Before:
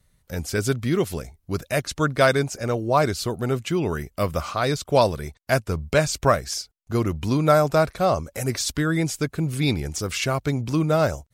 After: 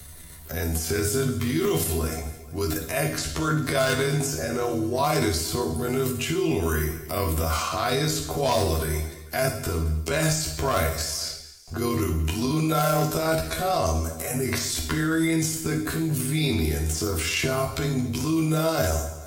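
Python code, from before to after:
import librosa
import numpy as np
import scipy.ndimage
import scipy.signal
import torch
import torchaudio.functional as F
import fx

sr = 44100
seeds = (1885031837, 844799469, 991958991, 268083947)

p1 = fx.high_shelf(x, sr, hz=7500.0, db=11.0)
p2 = fx.hum_notches(p1, sr, base_hz=60, count=5)
p3 = p2 + 0.31 * np.pad(p2, (int(2.9 * sr / 1000.0), 0))[:len(p2)]
p4 = fx.rider(p3, sr, range_db=4, speed_s=2.0)
p5 = p3 + (p4 * 10.0 ** (-2.5 / 20.0))
p6 = fx.transient(p5, sr, attack_db=-7, sustain_db=8)
p7 = 10.0 ** (-6.0 / 20.0) * (np.abs((p6 / 10.0 ** (-6.0 / 20.0) + 3.0) % 4.0 - 2.0) - 1.0)
p8 = fx.stretch_grains(p7, sr, factor=1.7, grain_ms=60.0)
p9 = p8 + fx.echo_feedback(p8, sr, ms=222, feedback_pct=29, wet_db=-20.0, dry=0)
p10 = fx.rev_gated(p9, sr, seeds[0], gate_ms=190, shape='falling', drr_db=2.5)
p11 = fx.band_squash(p10, sr, depth_pct=70)
y = p11 * 10.0 ** (-8.5 / 20.0)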